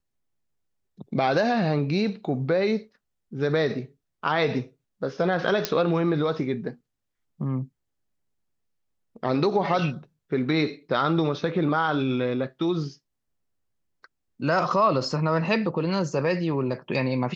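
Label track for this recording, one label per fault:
5.650000	5.650000	click −7 dBFS

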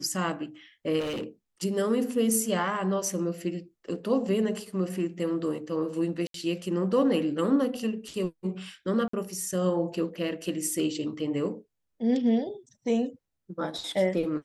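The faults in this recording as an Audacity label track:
0.990000	1.240000	clipping −29 dBFS
6.270000	6.340000	drop-out 73 ms
9.080000	9.130000	drop-out 54 ms

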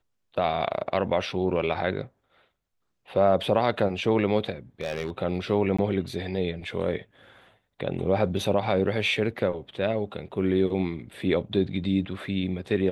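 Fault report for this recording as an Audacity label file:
4.810000	5.100000	clipping −24 dBFS
5.770000	5.790000	drop-out 15 ms

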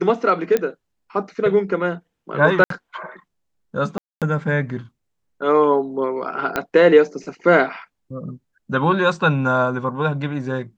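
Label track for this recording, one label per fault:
0.570000	0.570000	click −8 dBFS
2.640000	2.700000	drop-out 63 ms
3.980000	4.220000	drop-out 237 ms
6.560000	6.560000	click −7 dBFS

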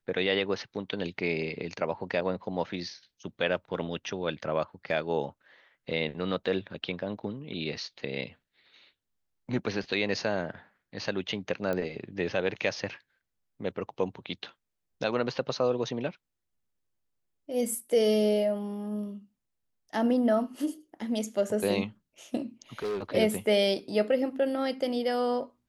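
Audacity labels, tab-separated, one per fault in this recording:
11.730000	11.730000	click −19 dBFS
22.790000	23.030000	clipping −28.5 dBFS

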